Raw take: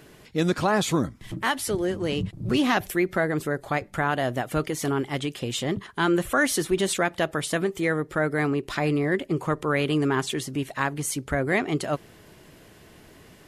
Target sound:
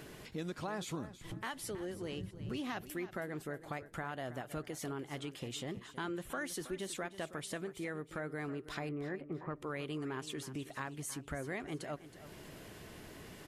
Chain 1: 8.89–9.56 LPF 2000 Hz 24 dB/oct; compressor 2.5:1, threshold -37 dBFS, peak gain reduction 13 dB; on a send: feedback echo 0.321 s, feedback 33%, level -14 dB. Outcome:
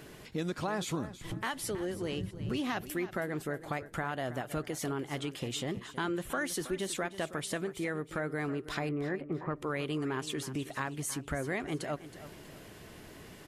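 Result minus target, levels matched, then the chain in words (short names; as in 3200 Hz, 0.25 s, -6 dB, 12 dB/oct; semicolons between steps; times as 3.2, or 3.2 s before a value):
compressor: peak gain reduction -6 dB
8.89–9.56 LPF 2000 Hz 24 dB/oct; compressor 2.5:1, threshold -47 dBFS, peak gain reduction 19 dB; on a send: feedback echo 0.321 s, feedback 33%, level -14 dB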